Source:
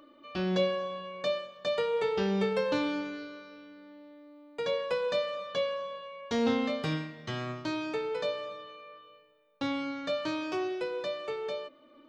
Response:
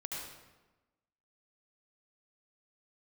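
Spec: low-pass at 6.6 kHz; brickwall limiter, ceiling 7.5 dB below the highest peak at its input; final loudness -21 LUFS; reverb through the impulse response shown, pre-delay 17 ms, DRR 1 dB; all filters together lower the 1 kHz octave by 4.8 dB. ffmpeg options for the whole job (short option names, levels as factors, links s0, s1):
-filter_complex "[0:a]lowpass=6600,equalizer=f=1000:t=o:g=-6,alimiter=level_in=1.19:limit=0.0631:level=0:latency=1,volume=0.841,asplit=2[s0][s1];[1:a]atrim=start_sample=2205,adelay=17[s2];[s1][s2]afir=irnorm=-1:irlink=0,volume=0.841[s3];[s0][s3]amix=inputs=2:normalize=0,volume=3.98"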